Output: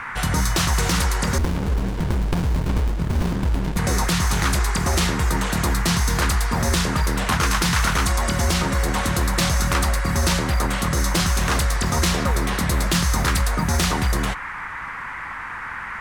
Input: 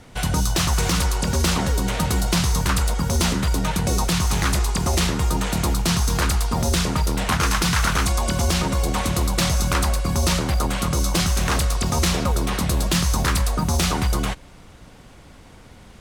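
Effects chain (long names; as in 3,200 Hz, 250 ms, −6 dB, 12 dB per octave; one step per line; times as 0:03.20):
noise in a band 870–2,100 Hz −32 dBFS
0:01.38–0:03.77: windowed peak hold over 65 samples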